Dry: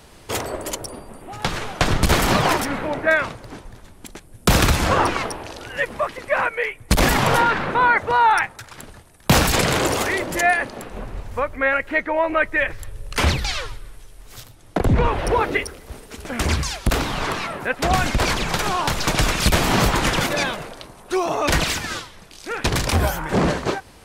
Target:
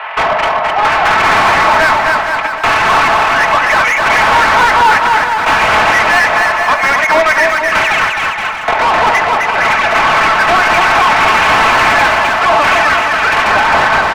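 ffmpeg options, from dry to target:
ffmpeg -i in.wav -filter_complex "[0:a]aecho=1:1:4.6:0.61,asplit=2[link_01][link_02];[link_02]acompressor=threshold=-32dB:ratio=5,volume=-2dB[link_03];[link_01][link_03]amix=inputs=2:normalize=0,asuperpass=centerf=1400:order=8:qfactor=0.66,atempo=1.7,asplit=2[link_04][link_05];[link_05]highpass=frequency=720:poles=1,volume=32dB,asoftclip=type=tanh:threshold=-4dB[link_06];[link_04][link_06]amix=inputs=2:normalize=0,lowpass=frequency=1800:poles=1,volume=-6dB,asplit=2[link_07][link_08];[link_08]aecho=0:1:260|468|634.4|767.5|874:0.631|0.398|0.251|0.158|0.1[link_09];[link_07][link_09]amix=inputs=2:normalize=0,asoftclip=type=tanh:threshold=-3dB,volume=2.5dB" out.wav

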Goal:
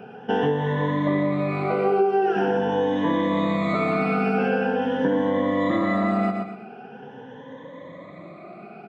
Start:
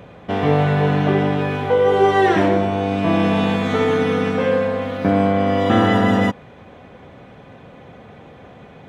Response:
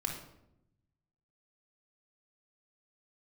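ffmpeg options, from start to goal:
-filter_complex "[0:a]afftfilt=real='re*pow(10,20/40*sin(2*PI*(1.1*log(max(b,1)*sr/1024/100)/log(2)-(0.44)*(pts-256)/sr)))':imag='im*pow(10,20/40*sin(2*PI*(1.1*log(max(b,1)*sr/1024/100)/log(2)-(0.44)*(pts-256)/sr)))':win_size=1024:overlap=0.75,aemphasis=mode=reproduction:type=75fm,asplit=2[link_01][link_02];[link_02]aecho=0:1:123|246|369:0.335|0.1|0.0301[link_03];[link_01][link_03]amix=inputs=2:normalize=0,acompressor=threshold=-14dB:ratio=12,highpass=frequency=160:width=0.5412,highpass=frequency=160:width=1.3066,volume=-3dB"

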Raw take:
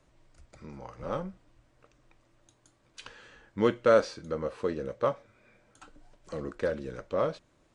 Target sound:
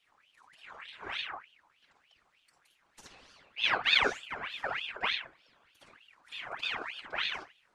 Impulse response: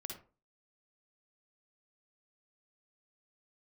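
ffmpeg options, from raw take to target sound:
-filter_complex "[1:a]atrim=start_sample=2205[link_01];[0:a][link_01]afir=irnorm=-1:irlink=0,afftfilt=real='hypot(re,im)*cos(2*PI*random(0))':imag='hypot(re,im)*sin(2*PI*random(1))':win_size=512:overlap=0.75,aeval=exprs='val(0)*sin(2*PI*2000*n/s+2000*0.55/3.3*sin(2*PI*3.3*n/s))':channel_layout=same,volume=7dB"

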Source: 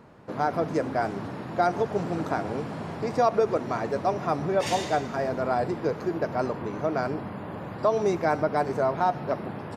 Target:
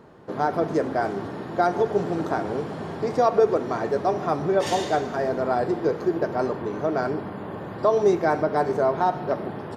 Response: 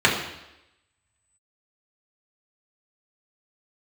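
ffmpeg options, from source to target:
-filter_complex "[0:a]equalizer=frequency=370:width=2.4:gain=6,asplit=2[link_01][link_02];[1:a]atrim=start_sample=2205,lowshelf=frequency=380:gain=-12[link_03];[link_02][link_03]afir=irnorm=-1:irlink=0,volume=-26dB[link_04];[link_01][link_04]amix=inputs=2:normalize=0"

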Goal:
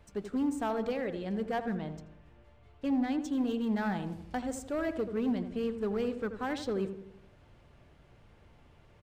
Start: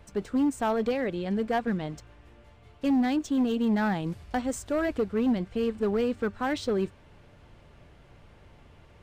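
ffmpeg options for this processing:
ffmpeg -i in.wav -filter_complex "[0:a]asettb=1/sr,asplit=3[link_01][link_02][link_03];[link_01]atrim=end=1.754[link_04];[link_02]atrim=start=1.75:end=3.21,asetpts=PTS-STARTPTS,afade=type=in:duration=0.004:curve=qsin,afade=type=out:start_time=1.456:duration=0.004:curve=qsin,highshelf=frequency=4800:gain=-7[link_05];[link_03]atrim=start=3.206[link_06];[link_04][link_05]acrossfade=duration=0.004:curve1=hsin:curve2=qsin[link_07];[link_07][link_06]acrossfade=duration=0.004:curve1=qsin:curve2=hsin,asplit=2[link_08][link_09];[link_09]adelay=83,lowpass=frequency=1300:poles=1,volume=-8.5dB,asplit=2[link_10][link_11];[link_11]adelay=83,lowpass=frequency=1300:poles=1,volume=0.53,asplit=2[link_12][link_13];[link_13]adelay=83,lowpass=frequency=1300:poles=1,volume=0.53,asplit=2[link_14][link_15];[link_15]adelay=83,lowpass=frequency=1300:poles=1,volume=0.53,asplit=2[link_16][link_17];[link_17]adelay=83,lowpass=frequency=1300:poles=1,volume=0.53,asplit=2[link_18][link_19];[link_19]adelay=83,lowpass=frequency=1300:poles=1,volume=0.53[link_20];[link_08][link_10][link_12][link_14][link_16][link_18][link_20]amix=inputs=7:normalize=0,volume=-6dB" out.wav

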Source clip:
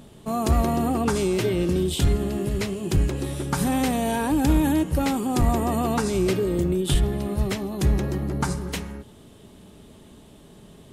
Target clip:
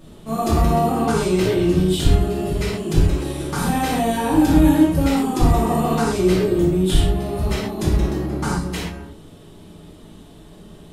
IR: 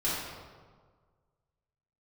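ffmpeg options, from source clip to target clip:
-filter_complex "[1:a]atrim=start_sample=2205,afade=type=out:start_time=0.19:duration=0.01,atrim=end_sample=8820[link_01];[0:a][link_01]afir=irnorm=-1:irlink=0,volume=-3.5dB"

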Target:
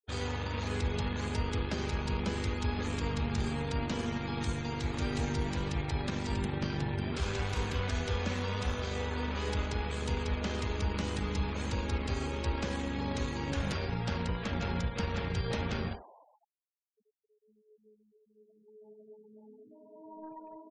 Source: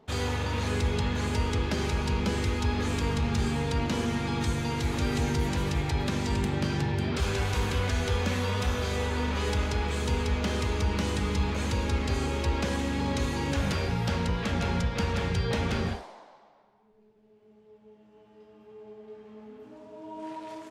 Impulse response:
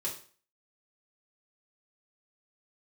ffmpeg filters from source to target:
-af "aeval=exprs='0.158*(cos(1*acos(clip(val(0)/0.158,-1,1)))-cos(1*PI/2))+0.00562*(cos(6*acos(clip(val(0)/0.158,-1,1)))-cos(6*PI/2))+0.00631*(cos(7*acos(clip(val(0)/0.158,-1,1)))-cos(7*PI/2))':channel_layout=same,afftfilt=real='re*gte(hypot(re,im),0.00708)':imag='im*gte(hypot(re,im),0.00708)':win_size=1024:overlap=0.75,volume=-5dB"

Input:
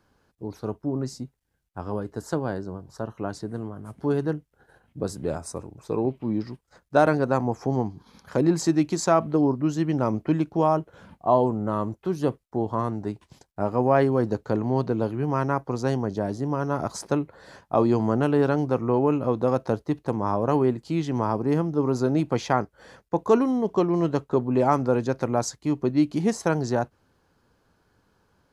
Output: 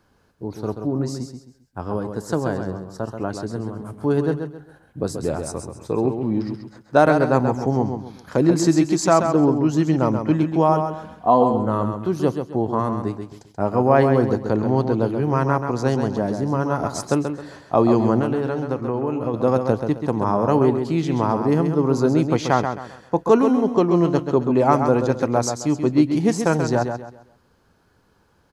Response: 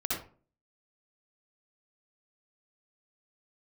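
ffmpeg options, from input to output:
-filter_complex "[0:a]asettb=1/sr,asplit=3[link_01][link_02][link_03];[link_01]atrim=end=10.724[link_04];[link_02]atrim=start=10.72:end=11.54,asetpts=PTS-STARTPTS,afade=type=in:duration=0.004:curve=qsin,afade=type=out:start_time=0.816:duration=0.004:curve=qsin,aecho=1:1:4.1:0.48,atrim=end_sample=36162[link_05];[link_03]atrim=start=11.536[link_06];[link_04][link_05]acrossfade=duration=0.004:curve1=hsin:curve2=qsin[link_07];[link_07][link_06]acrossfade=duration=0.004:curve1=qsin:curve2=hsin,asettb=1/sr,asplit=3[link_08][link_09][link_10];[link_08]atrim=end=18.204[link_11];[link_09]atrim=start=18.2:end=19.34,asetpts=PTS-STARTPTS,afade=type=in:duration=0.004:curve=qsin,afade=type=out:start_time=1.136:duration=0.004:curve=qsin,acompressor=threshold=-24dB:ratio=6[link_12];[link_10]atrim=start=19.336[link_13];[link_11][link_12]acrossfade=duration=0.004:curve1=hsin:curve2=qsin[link_14];[link_14][link_13]acrossfade=duration=0.004:curve1=qsin:curve2=hsin,aecho=1:1:133|266|399|532:0.447|0.138|0.0429|0.0133,volume=4dB"

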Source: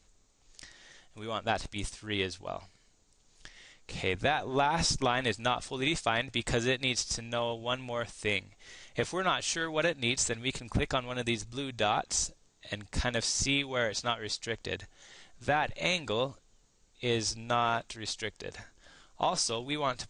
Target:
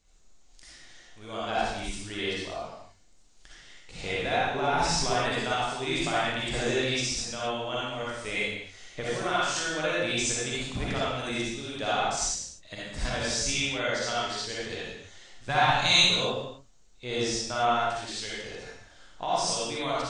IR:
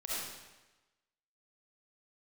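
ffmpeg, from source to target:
-filter_complex "[0:a]asettb=1/sr,asplit=3[link_01][link_02][link_03];[link_01]atrim=end=15.494[link_04];[link_02]atrim=start=15.49:end=16.06,asetpts=PTS-STARTPTS,afade=type=in:duration=0.004:curve=qsin,afade=type=out:start_time=0.566:duration=0.004:curve=qsin,equalizer=frequency=125:width_type=o:width=1:gain=10,equalizer=frequency=500:width_type=o:width=1:gain=-6,equalizer=frequency=1000:width_type=o:width=1:gain=9,equalizer=frequency=4000:width_type=o:width=1:gain=12,equalizer=frequency=8000:width_type=o:width=1:gain=8[link_05];[link_03]atrim=start=16.056[link_06];[link_04][link_05]acrossfade=duration=0.004:curve1=hsin:curve2=qsin[link_07];[link_07][link_06]acrossfade=duration=0.004:curve1=qsin:curve2=hsin[link_08];[1:a]atrim=start_sample=2205,afade=type=out:start_time=0.43:duration=0.01,atrim=end_sample=19404,asetrate=48510,aresample=44100[link_09];[link_08][link_09]afir=irnorm=-1:irlink=0"

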